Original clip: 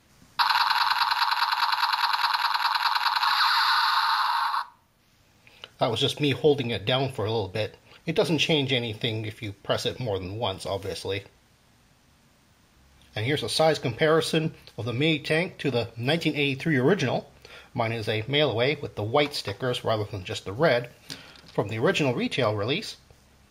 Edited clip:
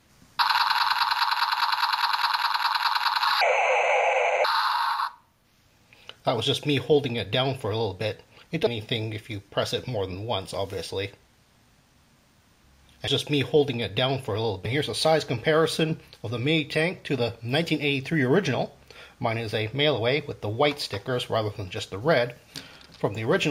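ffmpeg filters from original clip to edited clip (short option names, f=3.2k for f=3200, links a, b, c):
-filter_complex "[0:a]asplit=6[a][b][c][d][e][f];[a]atrim=end=3.414[g];[b]atrim=start=3.41:end=3.99,asetpts=PTS-STARTPTS,asetrate=24696,aresample=44100[h];[c]atrim=start=3.986:end=8.212[i];[d]atrim=start=8.788:end=13.202[j];[e]atrim=start=5.978:end=7.562[k];[f]atrim=start=13.198[l];[g][h]acrossfade=d=0.004:c1=hsin:c2=hsin[m];[m][i]acrossfade=d=0.004:c1=hsin:c2=hsin[n];[n][j]acrossfade=d=0.004:c1=hsin:c2=hsin[o];[o][k]acrossfade=d=0.004:c1=hsin:c2=hsin[p];[p][l]acrossfade=d=0.004:c1=hsin:c2=hsin"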